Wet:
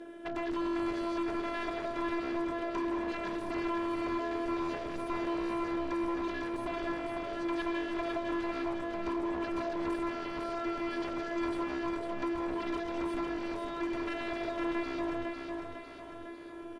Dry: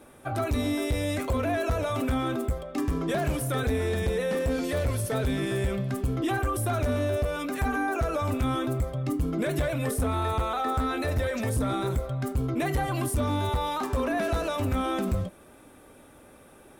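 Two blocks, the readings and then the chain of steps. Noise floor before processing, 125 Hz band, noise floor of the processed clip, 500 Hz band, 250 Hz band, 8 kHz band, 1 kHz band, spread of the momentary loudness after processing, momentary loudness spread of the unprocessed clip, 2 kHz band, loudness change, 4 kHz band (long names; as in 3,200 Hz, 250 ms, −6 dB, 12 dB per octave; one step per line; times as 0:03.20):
−53 dBFS, −23.5 dB, −45 dBFS, −6.5 dB, −3.5 dB, below −15 dB, −5.5 dB, 4 LU, 2 LU, −5.5 dB, −6.5 dB, −7.5 dB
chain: high-pass filter 160 Hz 12 dB per octave
downward compressor 4 to 1, threshold −36 dBFS, peak gain reduction 10.5 dB
hollow resonant body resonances 230/420/1,600/3,000 Hz, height 14 dB, ringing for 30 ms
phases set to zero 338 Hz
wave folding −28 dBFS
high-frequency loss of the air 100 metres
repeating echo 502 ms, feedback 56%, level −4.5 dB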